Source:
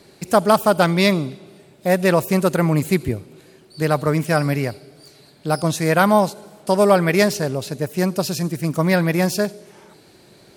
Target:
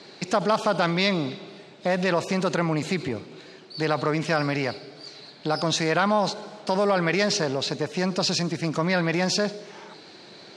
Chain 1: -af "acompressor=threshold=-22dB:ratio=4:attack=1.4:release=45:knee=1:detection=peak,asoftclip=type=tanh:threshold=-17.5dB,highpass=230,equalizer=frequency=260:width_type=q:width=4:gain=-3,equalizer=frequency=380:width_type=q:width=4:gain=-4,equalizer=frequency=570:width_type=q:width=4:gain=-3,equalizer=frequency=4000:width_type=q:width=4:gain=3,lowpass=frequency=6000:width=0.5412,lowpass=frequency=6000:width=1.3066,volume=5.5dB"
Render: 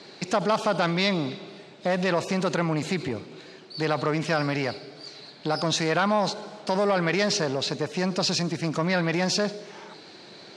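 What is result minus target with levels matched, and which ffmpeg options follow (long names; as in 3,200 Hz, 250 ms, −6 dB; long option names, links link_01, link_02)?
soft clipping: distortion +12 dB
-af "acompressor=threshold=-22dB:ratio=4:attack=1.4:release=45:knee=1:detection=peak,asoftclip=type=tanh:threshold=-10.5dB,highpass=230,equalizer=frequency=260:width_type=q:width=4:gain=-3,equalizer=frequency=380:width_type=q:width=4:gain=-4,equalizer=frequency=570:width_type=q:width=4:gain=-3,equalizer=frequency=4000:width_type=q:width=4:gain=3,lowpass=frequency=6000:width=0.5412,lowpass=frequency=6000:width=1.3066,volume=5.5dB"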